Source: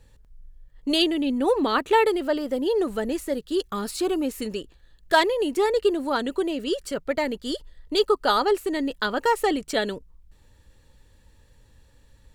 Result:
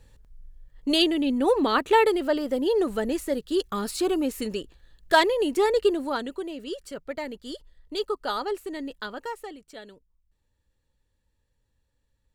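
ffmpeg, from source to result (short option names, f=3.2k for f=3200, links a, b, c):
-af "afade=t=out:st=5.84:d=0.53:silence=0.398107,afade=t=out:st=8.92:d=0.61:silence=0.298538"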